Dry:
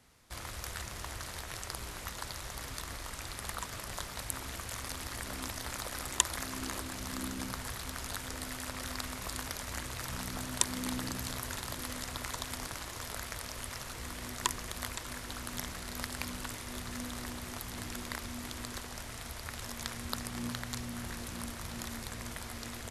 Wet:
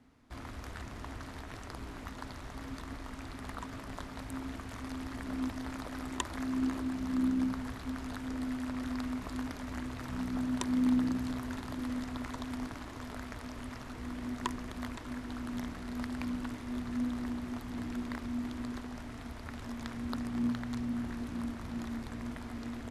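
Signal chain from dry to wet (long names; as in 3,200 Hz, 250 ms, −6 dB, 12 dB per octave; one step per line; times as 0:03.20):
low-pass filter 1,400 Hz 6 dB per octave
parametric band 260 Hz +13.5 dB 0.36 octaves
notch filter 530 Hz, Q 14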